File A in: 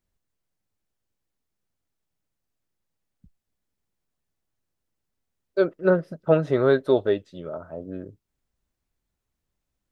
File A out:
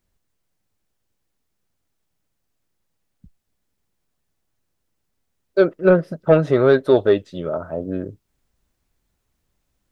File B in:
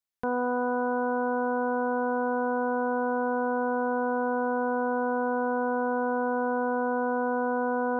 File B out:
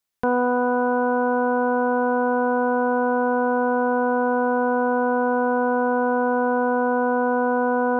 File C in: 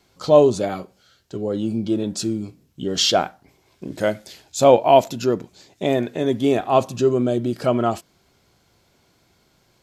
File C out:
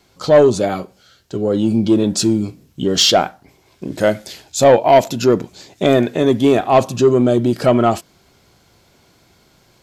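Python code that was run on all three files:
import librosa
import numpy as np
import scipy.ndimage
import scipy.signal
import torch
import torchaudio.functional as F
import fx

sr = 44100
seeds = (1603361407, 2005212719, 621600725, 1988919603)

p1 = fx.rider(x, sr, range_db=4, speed_s=0.5)
p2 = x + F.gain(torch.from_numpy(p1), 1.5).numpy()
y = 10.0 ** (-2.5 / 20.0) * np.tanh(p2 / 10.0 ** (-2.5 / 20.0))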